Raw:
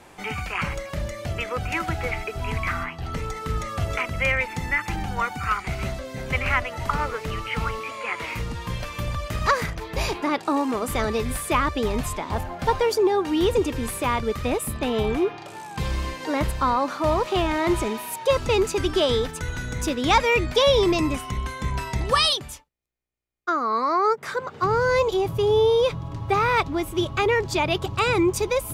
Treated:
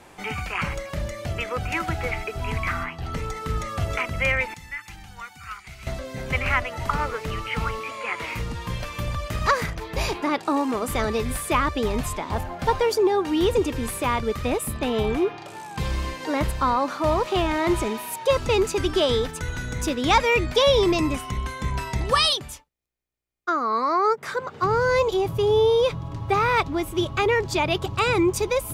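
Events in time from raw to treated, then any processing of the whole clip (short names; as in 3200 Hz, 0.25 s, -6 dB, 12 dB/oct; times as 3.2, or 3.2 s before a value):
4.54–5.87 passive tone stack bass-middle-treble 5-5-5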